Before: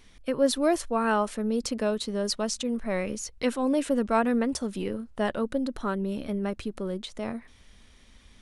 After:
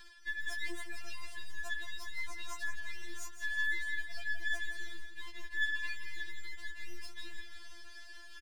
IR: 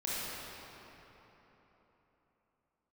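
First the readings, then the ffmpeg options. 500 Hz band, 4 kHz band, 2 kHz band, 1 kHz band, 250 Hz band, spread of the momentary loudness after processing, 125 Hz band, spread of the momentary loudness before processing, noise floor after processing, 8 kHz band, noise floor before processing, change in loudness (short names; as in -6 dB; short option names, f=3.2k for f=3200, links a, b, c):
-32.0 dB, -7.5 dB, +2.5 dB, -23.0 dB, -32.5 dB, 14 LU, under -15 dB, 10 LU, -48 dBFS, -13.5 dB, -54 dBFS, -11.5 dB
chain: -af "afftfilt=real='real(if(lt(b,272),68*(eq(floor(b/68),0)*3+eq(floor(b/68),1)*0+eq(floor(b/68),2)*1+eq(floor(b/68),3)*2)+mod(b,68),b),0)':imag='imag(if(lt(b,272),68*(eq(floor(b/68),0)*3+eq(floor(b/68),1)*0+eq(floor(b/68),2)*1+eq(floor(b/68),3)*2)+mod(b,68),b),0)':win_size=2048:overlap=0.75,lowpass=10k,highshelf=f=3.9k:g=-4.5,aecho=1:1:7:0.56,bandreject=f=66.2:t=h:w=4,bandreject=f=132.4:t=h:w=4,bandreject=f=198.6:t=h:w=4,bandreject=f=264.8:t=h:w=4,bandreject=f=331:t=h:w=4,bandreject=f=397.2:t=h:w=4,bandreject=f=463.4:t=h:w=4,bandreject=f=529.6:t=h:w=4,bandreject=f=595.8:t=h:w=4,bandreject=f=662:t=h:w=4,bandreject=f=728.2:t=h:w=4,bandreject=f=794.4:t=h:w=4,bandreject=f=860.6:t=h:w=4,bandreject=f=926.8:t=h:w=4,bandreject=f=993:t=h:w=4,bandreject=f=1.0592k:t=h:w=4,bandreject=f=1.1254k:t=h:w=4,bandreject=f=1.1916k:t=h:w=4,bandreject=f=1.2578k:t=h:w=4,bandreject=f=1.324k:t=h:w=4,bandreject=f=1.3902k:t=h:w=4,bandreject=f=1.4564k:t=h:w=4,bandreject=f=1.5226k:t=h:w=4,bandreject=f=1.5888k:t=h:w=4,bandreject=f=1.655k:t=h:w=4,bandreject=f=1.7212k:t=h:w=4,bandreject=f=1.7874k:t=h:w=4,bandreject=f=1.8536k:t=h:w=4,bandreject=f=1.9198k:t=h:w=4,bandreject=f=1.986k:t=h:w=4,bandreject=f=2.0522k:t=h:w=4,bandreject=f=2.1184k:t=h:w=4,bandreject=f=2.1846k:t=h:w=4,bandreject=f=2.2508k:t=h:w=4,areverse,acompressor=threshold=-38dB:ratio=5,areverse,alimiter=level_in=12.5dB:limit=-24dB:level=0:latency=1:release=302,volume=-12.5dB,aeval=exprs='clip(val(0),-1,0.00126)':c=same,aecho=1:1:169|338|507|676|845:0.335|0.151|0.0678|0.0305|0.0137,afftfilt=real='re*4*eq(mod(b,16),0)':imag='im*4*eq(mod(b,16),0)':win_size=2048:overlap=0.75,volume=8dB"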